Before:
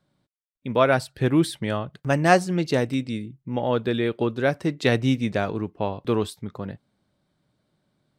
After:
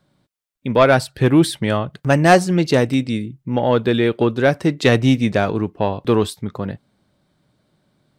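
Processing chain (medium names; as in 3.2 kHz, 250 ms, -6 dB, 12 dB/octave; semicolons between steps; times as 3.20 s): saturation -10 dBFS, distortion -19 dB; trim +7.5 dB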